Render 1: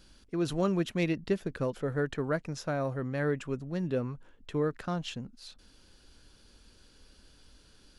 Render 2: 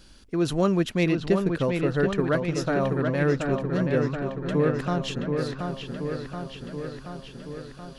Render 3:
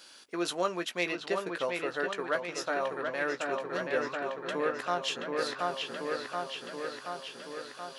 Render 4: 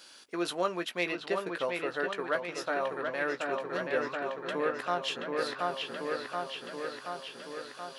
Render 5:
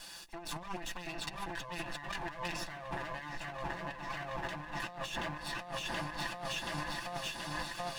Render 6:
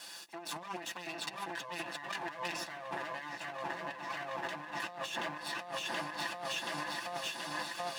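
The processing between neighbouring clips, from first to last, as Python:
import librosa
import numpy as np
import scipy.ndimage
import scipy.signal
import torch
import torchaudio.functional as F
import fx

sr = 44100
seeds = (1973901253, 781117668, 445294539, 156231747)

y1 = fx.echo_wet_lowpass(x, sr, ms=728, feedback_pct=66, hz=3900.0, wet_db=-5.0)
y1 = y1 * 10.0 ** (6.0 / 20.0)
y2 = scipy.signal.sosfilt(scipy.signal.butter(2, 630.0, 'highpass', fs=sr, output='sos'), y1)
y2 = fx.rider(y2, sr, range_db=4, speed_s=0.5)
y2 = fx.doubler(y2, sr, ms=17.0, db=-9.5)
y3 = fx.dynamic_eq(y2, sr, hz=6600.0, q=1.6, threshold_db=-55.0, ratio=4.0, max_db=-6)
y4 = fx.lower_of_two(y3, sr, delay_ms=1.1)
y4 = y4 + 0.78 * np.pad(y4, (int(5.9 * sr / 1000.0), 0))[:len(y4)]
y4 = fx.over_compress(y4, sr, threshold_db=-40.0, ratio=-1.0)
y4 = y4 * 10.0 ** (-1.0 / 20.0)
y5 = scipy.signal.sosfilt(scipy.signal.butter(2, 250.0, 'highpass', fs=sr, output='sos'), y4)
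y5 = y5 * 10.0 ** (1.0 / 20.0)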